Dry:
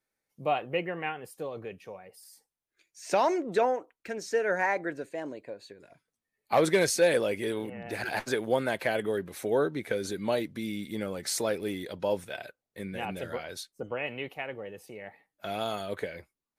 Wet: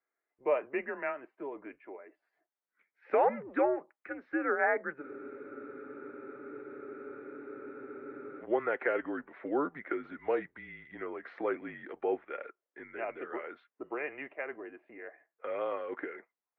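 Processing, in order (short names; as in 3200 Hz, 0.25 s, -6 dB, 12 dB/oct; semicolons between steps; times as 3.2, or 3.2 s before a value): mistuned SSB -140 Hz 530–2300 Hz; spectral freeze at 5.04, 3.37 s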